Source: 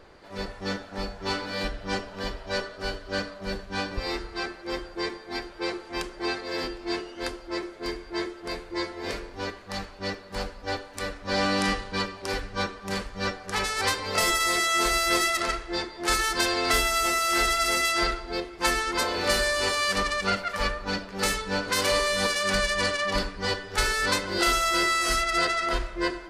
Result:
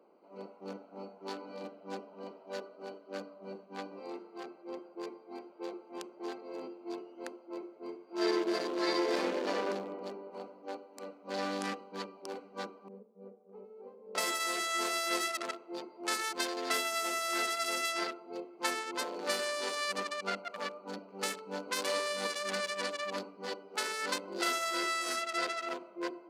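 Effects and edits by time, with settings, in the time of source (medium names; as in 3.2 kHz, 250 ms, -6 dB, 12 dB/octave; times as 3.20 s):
8.05–9.69 s: reverb throw, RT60 2.5 s, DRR -11.5 dB
12.88–14.15 s: two resonant band-passes 310 Hz, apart 0.97 oct
whole clip: local Wiener filter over 25 samples; steep high-pass 200 Hz 36 dB/octave; bass shelf 340 Hz -3.5 dB; trim -7 dB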